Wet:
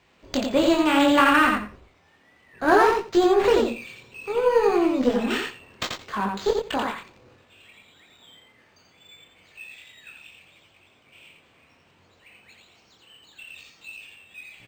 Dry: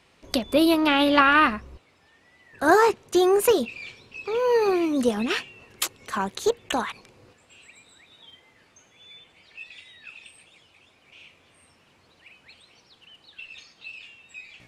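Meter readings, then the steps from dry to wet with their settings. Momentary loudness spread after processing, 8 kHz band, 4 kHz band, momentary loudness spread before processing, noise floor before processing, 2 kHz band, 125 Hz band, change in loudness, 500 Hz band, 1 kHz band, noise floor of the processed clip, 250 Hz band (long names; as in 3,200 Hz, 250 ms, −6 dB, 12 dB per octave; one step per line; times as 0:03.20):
21 LU, −5.0 dB, −1.0 dB, 22 LU, −60 dBFS, 0.0 dB, +2.0 dB, +0.5 dB, +1.0 dB, +1.0 dB, −60 dBFS, +1.5 dB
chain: chorus effect 0.65 Hz, delay 19.5 ms, depth 7.2 ms
harmonic generator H 8 −27 dB, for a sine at −6.5 dBFS
on a send: repeating echo 86 ms, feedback 16%, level −4 dB
on the sum: linearly interpolated sample-rate reduction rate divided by 4×
level +2.5 dB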